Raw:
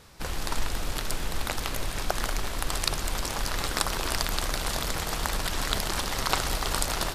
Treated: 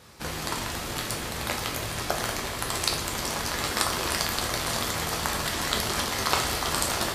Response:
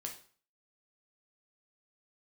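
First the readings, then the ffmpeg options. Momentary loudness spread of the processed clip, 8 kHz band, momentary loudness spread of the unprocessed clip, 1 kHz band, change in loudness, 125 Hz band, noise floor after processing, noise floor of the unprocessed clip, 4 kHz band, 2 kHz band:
6 LU, +2.5 dB, 5 LU, +2.5 dB, +2.0 dB, 0.0 dB, -34 dBFS, -34 dBFS, +2.5 dB, +2.5 dB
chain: -filter_complex "[0:a]highpass=72[a];[1:a]atrim=start_sample=2205[b];[a][b]afir=irnorm=-1:irlink=0,volume=4.5dB"

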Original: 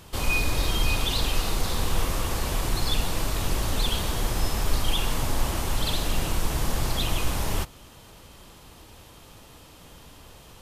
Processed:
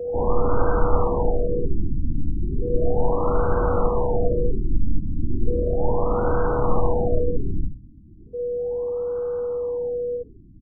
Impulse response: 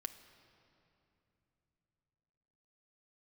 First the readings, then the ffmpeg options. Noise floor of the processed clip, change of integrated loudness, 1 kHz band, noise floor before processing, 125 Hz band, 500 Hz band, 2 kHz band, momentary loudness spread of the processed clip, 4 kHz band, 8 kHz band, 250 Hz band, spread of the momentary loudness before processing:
-46 dBFS, +3.0 dB, +5.5 dB, -49 dBFS, +3.5 dB, +14.5 dB, -9.0 dB, 6 LU, under -40 dB, under -40 dB, +6.0 dB, 3 LU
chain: -af "aeval=exprs='val(0)+0.0251*sin(2*PI*500*n/s)':c=same,lowshelf=f=420:g=-5.5,bandreject=f=65.06:t=h:w=4,bandreject=f=130.12:t=h:w=4,bandreject=f=195.18:t=h:w=4,afreqshift=-14,aecho=1:1:52|78:0.531|0.562,afftfilt=real='re*lt(b*sr/1024,310*pow(1600/310,0.5+0.5*sin(2*PI*0.35*pts/sr)))':imag='im*lt(b*sr/1024,310*pow(1600/310,0.5+0.5*sin(2*PI*0.35*pts/sr)))':win_size=1024:overlap=0.75,volume=8.5dB"

